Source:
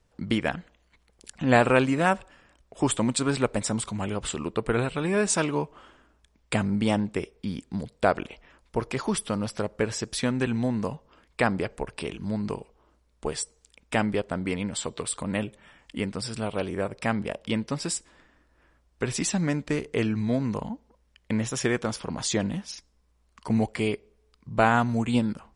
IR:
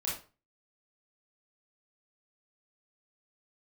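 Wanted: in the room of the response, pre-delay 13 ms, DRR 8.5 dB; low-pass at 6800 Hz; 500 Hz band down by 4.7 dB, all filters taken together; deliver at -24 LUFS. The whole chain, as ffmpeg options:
-filter_complex "[0:a]lowpass=6.8k,equalizer=f=500:t=o:g=-6,asplit=2[a][b];[1:a]atrim=start_sample=2205,adelay=13[c];[b][c]afir=irnorm=-1:irlink=0,volume=-12dB[d];[a][d]amix=inputs=2:normalize=0,volume=5dB"

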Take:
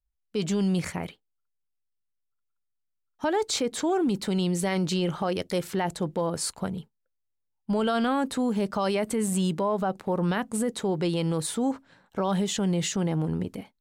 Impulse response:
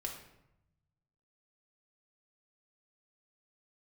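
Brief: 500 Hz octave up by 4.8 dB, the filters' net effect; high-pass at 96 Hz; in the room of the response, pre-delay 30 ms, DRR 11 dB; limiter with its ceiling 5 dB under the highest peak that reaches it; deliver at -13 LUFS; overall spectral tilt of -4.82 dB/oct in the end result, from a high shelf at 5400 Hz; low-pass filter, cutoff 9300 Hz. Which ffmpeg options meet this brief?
-filter_complex "[0:a]highpass=96,lowpass=9.3k,equalizer=f=500:t=o:g=6,highshelf=f=5.4k:g=7,alimiter=limit=-17.5dB:level=0:latency=1,asplit=2[a][b];[1:a]atrim=start_sample=2205,adelay=30[c];[b][c]afir=irnorm=-1:irlink=0,volume=-11dB[d];[a][d]amix=inputs=2:normalize=0,volume=14dB"

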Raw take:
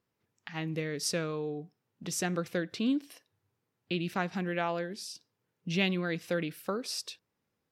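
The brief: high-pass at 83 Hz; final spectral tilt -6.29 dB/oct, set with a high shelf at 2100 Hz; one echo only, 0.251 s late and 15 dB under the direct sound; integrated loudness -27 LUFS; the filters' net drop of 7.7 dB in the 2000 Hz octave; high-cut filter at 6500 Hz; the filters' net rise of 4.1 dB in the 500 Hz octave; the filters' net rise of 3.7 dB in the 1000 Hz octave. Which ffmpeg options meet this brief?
-af "highpass=83,lowpass=6.5k,equalizer=f=500:t=o:g=4,equalizer=f=1k:t=o:g=7.5,equalizer=f=2k:t=o:g=-8,highshelf=f=2.1k:g=-9,aecho=1:1:251:0.178,volume=5.5dB"

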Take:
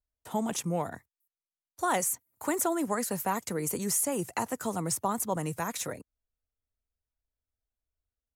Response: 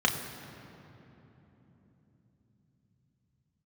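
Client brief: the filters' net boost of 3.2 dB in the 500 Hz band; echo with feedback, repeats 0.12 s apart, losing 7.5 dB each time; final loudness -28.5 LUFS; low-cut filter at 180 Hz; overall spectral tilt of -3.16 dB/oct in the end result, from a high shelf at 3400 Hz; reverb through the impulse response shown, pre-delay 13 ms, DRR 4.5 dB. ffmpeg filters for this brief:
-filter_complex "[0:a]highpass=180,equalizer=f=500:t=o:g=4,highshelf=f=3.4k:g=4.5,aecho=1:1:120|240|360|480|600:0.422|0.177|0.0744|0.0312|0.0131,asplit=2[a][b];[1:a]atrim=start_sample=2205,adelay=13[c];[b][c]afir=irnorm=-1:irlink=0,volume=-16.5dB[d];[a][d]amix=inputs=2:normalize=0,volume=-1.5dB"

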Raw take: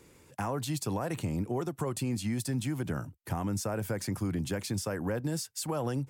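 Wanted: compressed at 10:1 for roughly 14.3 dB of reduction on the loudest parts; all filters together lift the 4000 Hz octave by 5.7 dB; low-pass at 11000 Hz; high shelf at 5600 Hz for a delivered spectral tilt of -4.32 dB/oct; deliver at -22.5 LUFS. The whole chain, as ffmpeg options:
-af "lowpass=11k,equalizer=f=4k:t=o:g=4,highshelf=f=5.6k:g=7,acompressor=threshold=-43dB:ratio=10,volume=24dB"

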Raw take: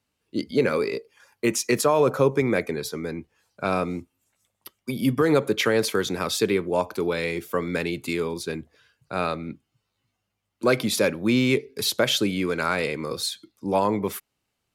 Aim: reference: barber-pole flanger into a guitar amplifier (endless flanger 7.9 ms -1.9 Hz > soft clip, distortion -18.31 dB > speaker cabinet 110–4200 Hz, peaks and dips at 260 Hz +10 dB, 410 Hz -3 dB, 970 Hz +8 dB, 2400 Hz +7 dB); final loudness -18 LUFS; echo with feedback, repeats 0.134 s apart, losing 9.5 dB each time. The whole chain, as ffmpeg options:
-filter_complex "[0:a]aecho=1:1:134|268|402|536:0.335|0.111|0.0365|0.012,asplit=2[a][b];[b]adelay=7.9,afreqshift=-1.9[c];[a][c]amix=inputs=2:normalize=1,asoftclip=threshold=-16.5dB,highpass=110,equalizer=f=260:t=q:w=4:g=10,equalizer=f=410:t=q:w=4:g=-3,equalizer=f=970:t=q:w=4:g=8,equalizer=f=2.4k:t=q:w=4:g=7,lowpass=f=4.2k:w=0.5412,lowpass=f=4.2k:w=1.3066,volume=8.5dB"

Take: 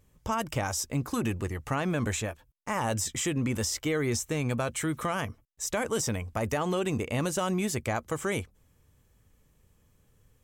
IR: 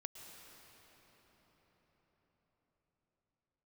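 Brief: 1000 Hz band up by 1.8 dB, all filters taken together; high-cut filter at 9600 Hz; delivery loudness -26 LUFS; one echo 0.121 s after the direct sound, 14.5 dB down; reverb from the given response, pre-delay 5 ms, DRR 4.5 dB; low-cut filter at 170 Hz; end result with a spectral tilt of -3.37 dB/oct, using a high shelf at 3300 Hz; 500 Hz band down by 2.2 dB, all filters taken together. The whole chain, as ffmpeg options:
-filter_complex "[0:a]highpass=170,lowpass=9.6k,equalizer=f=500:t=o:g=-3.5,equalizer=f=1k:t=o:g=3,highshelf=f=3.3k:g=3,aecho=1:1:121:0.188,asplit=2[a][b];[1:a]atrim=start_sample=2205,adelay=5[c];[b][c]afir=irnorm=-1:irlink=0,volume=-1dB[d];[a][d]amix=inputs=2:normalize=0,volume=4dB"

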